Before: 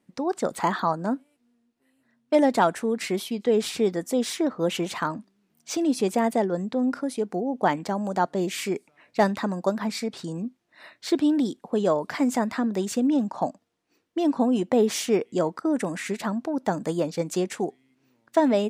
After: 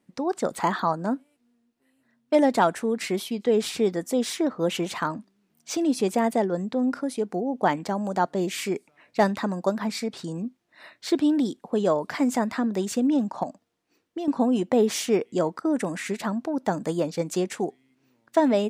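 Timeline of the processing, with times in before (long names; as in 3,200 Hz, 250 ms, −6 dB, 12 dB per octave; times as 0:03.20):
0:13.43–0:14.28: downward compressor, threshold −27 dBFS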